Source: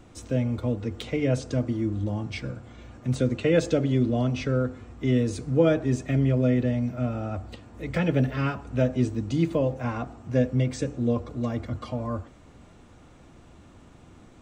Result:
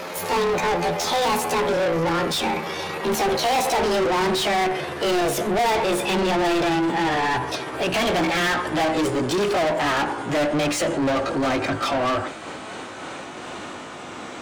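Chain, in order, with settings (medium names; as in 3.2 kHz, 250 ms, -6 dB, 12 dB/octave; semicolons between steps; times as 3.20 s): pitch bend over the whole clip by +10 st ending unshifted; bass shelf 130 Hz -10.5 dB; overdrive pedal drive 38 dB, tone 4.7 kHz, clips at -9 dBFS; trim -5 dB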